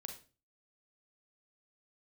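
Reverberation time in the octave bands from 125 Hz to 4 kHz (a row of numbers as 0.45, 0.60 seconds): 0.55, 0.45, 0.40, 0.30, 0.30, 0.30 seconds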